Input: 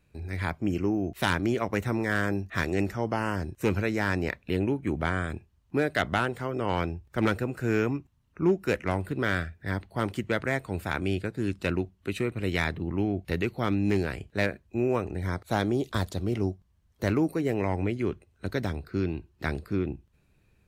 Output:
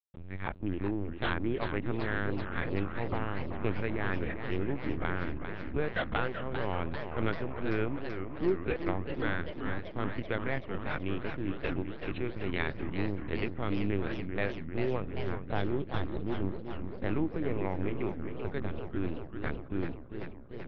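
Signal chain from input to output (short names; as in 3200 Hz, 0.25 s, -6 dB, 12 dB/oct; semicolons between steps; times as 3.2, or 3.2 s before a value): backlash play -36 dBFS; LPC vocoder at 8 kHz pitch kept; warbling echo 0.39 s, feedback 73%, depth 214 cents, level -8 dB; gain -5.5 dB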